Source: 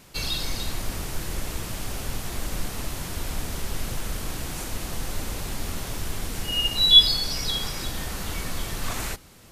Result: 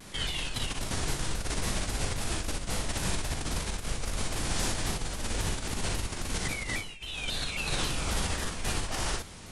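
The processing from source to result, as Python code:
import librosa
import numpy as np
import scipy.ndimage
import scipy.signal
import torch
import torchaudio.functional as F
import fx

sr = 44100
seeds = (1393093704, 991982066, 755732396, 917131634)

y = fx.over_compress(x, sr, threshold_db=-32.0, ratio=-1.0)
y = fx.formant_shift(y, sr, semitones=-5)
y = fx.room_early_taps(y, sr, ms=(40, 61), db=(-6.0, -4.0))
y = fx.vibrato_shape(y, sr, shape='saw_down', rate_hz=3.7, depth_cents=160.0)
y = y * librosa.db_to_amplitude(-2.0)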